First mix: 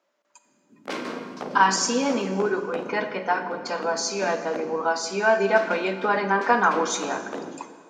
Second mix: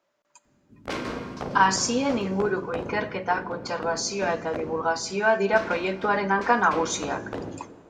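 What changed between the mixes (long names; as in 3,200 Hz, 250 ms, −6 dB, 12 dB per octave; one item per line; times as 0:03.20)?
speech: send −11.0 dB
master: remove high-pass filter 190 Hz 24 dB per octave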